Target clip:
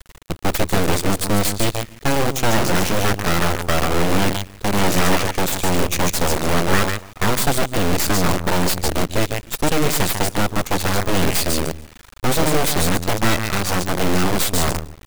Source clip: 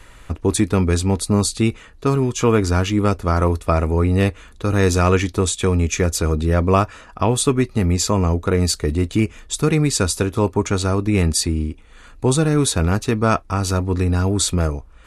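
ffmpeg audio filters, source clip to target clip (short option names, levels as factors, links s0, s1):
-af "bandreject=f=1500:w=11,aecho=1:1:145|290|435:0.422|0.0717|0.0122,acrusher=bits=4:dc=4:mix=0:aa=0.000001,aeval=exprs='abs(val(0))':c=same"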